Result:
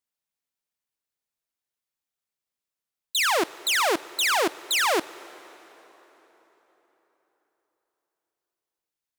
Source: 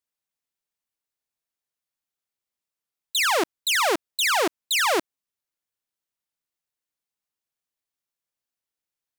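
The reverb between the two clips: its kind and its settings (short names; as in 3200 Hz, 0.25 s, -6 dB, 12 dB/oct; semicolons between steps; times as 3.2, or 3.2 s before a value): plate-style reverb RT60 4.3 s, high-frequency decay 0.7×, DRR 17.5 dB; gain -1 dB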